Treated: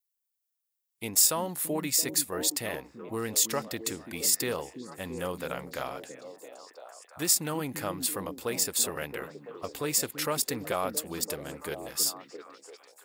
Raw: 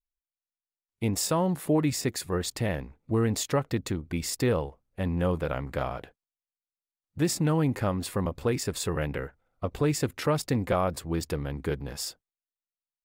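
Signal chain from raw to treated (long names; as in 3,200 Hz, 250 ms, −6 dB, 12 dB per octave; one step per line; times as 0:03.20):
RIAA equalisation recording
echo through a band-pass that steps 336 ms, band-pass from 220 Hz, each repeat 0.7 octaves, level −4 dB
level −3 dB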